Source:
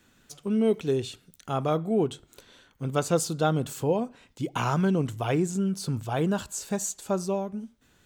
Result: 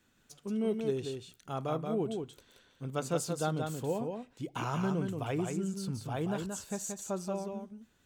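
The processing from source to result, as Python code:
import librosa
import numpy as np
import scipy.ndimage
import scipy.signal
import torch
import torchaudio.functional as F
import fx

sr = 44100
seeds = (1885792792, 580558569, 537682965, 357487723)

y = x + 10.0 ** (-5.0 / 20.0) * np.pad(x, (int(178 * sr / 1000.0), 0))[:len(x)]
y = F.gain(torch.from_numpy(y), -8.5).numpy()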